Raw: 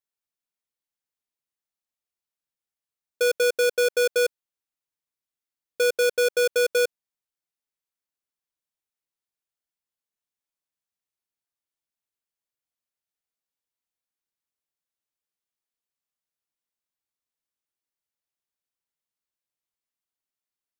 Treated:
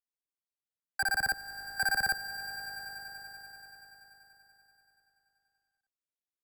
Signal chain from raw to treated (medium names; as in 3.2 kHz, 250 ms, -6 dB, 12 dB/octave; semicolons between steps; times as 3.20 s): octave divider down 1 oct, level +3 dB; wide varispeed 3.23×; echo with a slow build-up 96 ms, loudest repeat 5, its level -18 dB; trim -8.5 dB